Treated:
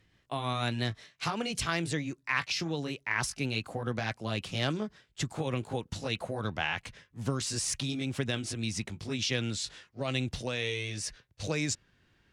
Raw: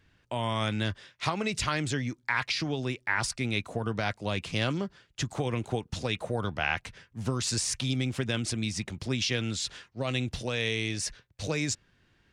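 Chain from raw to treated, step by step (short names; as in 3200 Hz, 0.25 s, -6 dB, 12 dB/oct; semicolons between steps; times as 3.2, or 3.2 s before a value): gliding pitch shift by +2 st ending unshifted; added harmonics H 3 -27 dB, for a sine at -13 dBFS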